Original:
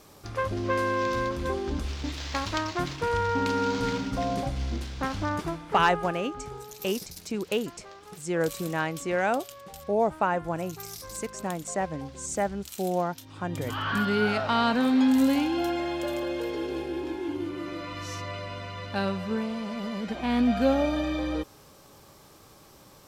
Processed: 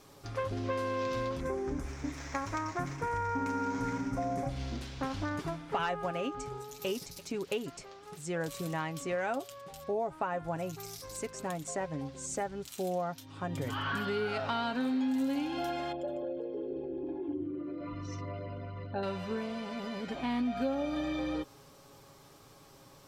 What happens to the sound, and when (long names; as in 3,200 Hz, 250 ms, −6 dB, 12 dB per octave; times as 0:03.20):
0:01.40–0:04.49: flat-topped bell 3,600 Hz −13 dB 1 octave
0:06.38–0:06.86: delay throw 340 ms, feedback 40%, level −16 dB
0:15.92–0:19.03: spectral envelope exaggerated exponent 2
whole clip: high-shelf EQ 10,000 Hz −5 dB; comb filter 7.3 ms, depth 47%; downward compressor 4 to 1, threshold −26 dBFS; level −4 dB